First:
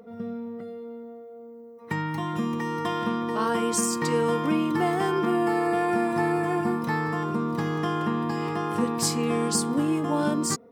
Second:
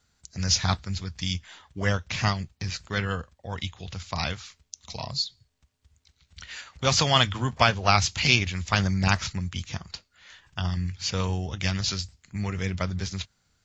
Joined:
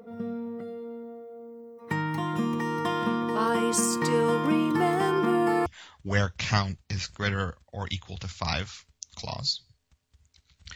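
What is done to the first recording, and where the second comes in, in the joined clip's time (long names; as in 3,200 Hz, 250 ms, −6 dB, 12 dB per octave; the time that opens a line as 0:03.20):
first
0:05.66: continue with second from 0:01.37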